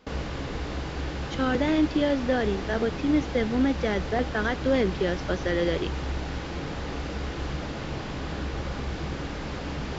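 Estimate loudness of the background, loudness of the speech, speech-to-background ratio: -33.5 LUFS, -26.5 LUFS, 7.0 dB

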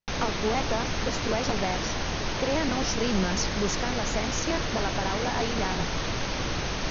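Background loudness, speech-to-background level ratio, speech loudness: -30.0 LUFS, -1.0 dB, -31.0 LUFS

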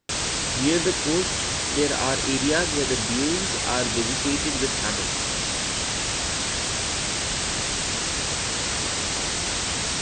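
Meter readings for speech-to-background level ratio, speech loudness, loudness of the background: -3.0 dB, -27.0 LUFS, -24.0 LUFS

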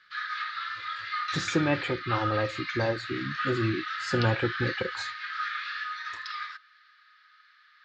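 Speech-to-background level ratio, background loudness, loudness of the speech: 2.5 dB, -33.0 LUFS, -30.5 LUFS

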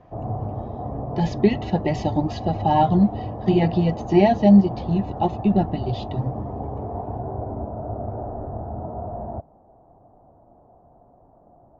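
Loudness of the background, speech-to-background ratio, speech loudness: -31.5 LUFS, 10.5 dB, -21.0 LUFS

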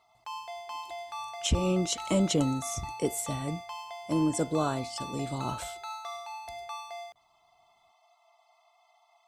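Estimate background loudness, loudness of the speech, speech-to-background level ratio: -40.5 LUFS, -30.5 LUFS, 10.0 dB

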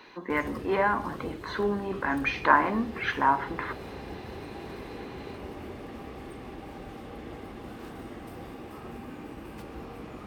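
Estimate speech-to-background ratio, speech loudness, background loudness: 14.5 dB, -27.5 LUFS, -42.0 LUFS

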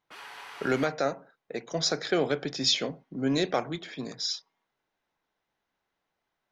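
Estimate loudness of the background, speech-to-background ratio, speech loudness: -43.5 LUFS, 14.5 dB, -29.0 LUFS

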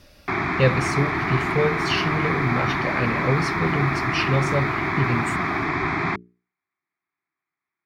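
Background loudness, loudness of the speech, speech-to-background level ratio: -24.0 LUFS, -25.0 LUFS, -1.0 dB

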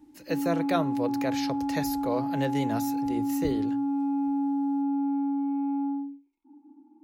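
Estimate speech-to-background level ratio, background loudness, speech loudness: -3.5 dB, -29.0 LUFS, -32.5 LUFS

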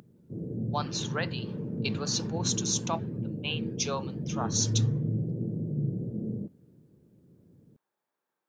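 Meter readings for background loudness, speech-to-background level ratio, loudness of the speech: -33.5 LUFS, 0.5 dB, -33.0 LUFS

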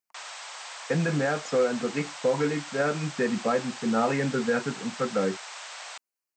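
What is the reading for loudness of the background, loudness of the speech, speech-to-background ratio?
-39.0 LUFS, -27.5 LUFS, 11.5 dB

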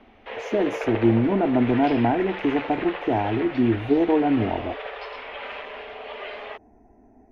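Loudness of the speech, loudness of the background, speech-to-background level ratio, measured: -22.5 LUFS, -34.0 LUFS, 11.5 dB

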